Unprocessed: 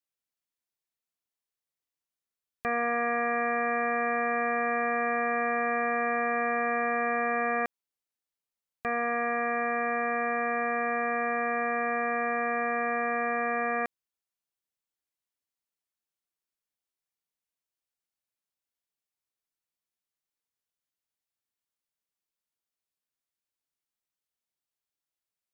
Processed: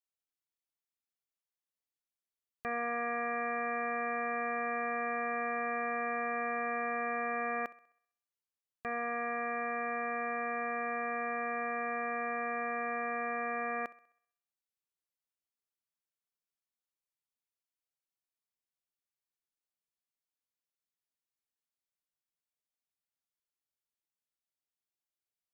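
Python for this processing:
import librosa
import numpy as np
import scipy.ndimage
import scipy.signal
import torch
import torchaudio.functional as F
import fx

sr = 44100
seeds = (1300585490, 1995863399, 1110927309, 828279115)

y = fx.echo_thinned(x, sr, ms=65, feedback_pct=49, hz=220.0, wet_db=-19.5)
y = F.gain(torch.from_numpy(y), -7.0).numpy()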